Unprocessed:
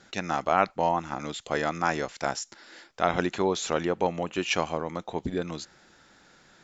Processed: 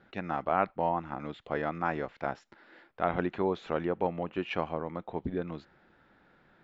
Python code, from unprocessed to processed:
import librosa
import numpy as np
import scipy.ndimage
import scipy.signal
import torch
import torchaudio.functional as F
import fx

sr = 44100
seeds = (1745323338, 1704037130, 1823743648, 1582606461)

y = fx.air_absorb(x, sr, metres=480.0)
y = y * librosa.db_to_amplitude(-2.5)